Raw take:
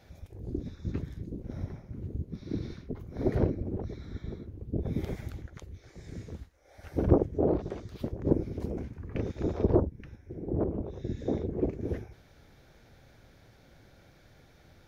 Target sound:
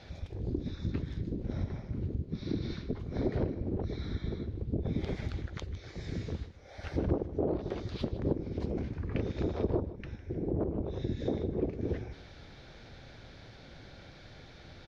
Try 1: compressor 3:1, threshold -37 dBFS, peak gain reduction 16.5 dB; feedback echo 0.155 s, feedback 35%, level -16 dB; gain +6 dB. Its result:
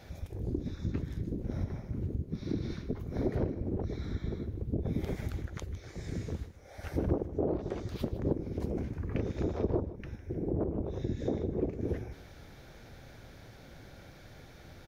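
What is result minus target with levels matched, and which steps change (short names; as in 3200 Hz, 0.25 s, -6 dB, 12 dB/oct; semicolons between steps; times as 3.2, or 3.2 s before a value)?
4000 Hz band -4.0 dB
add after compressor: synth low-pass 4300 Hz, resonance Q 1.7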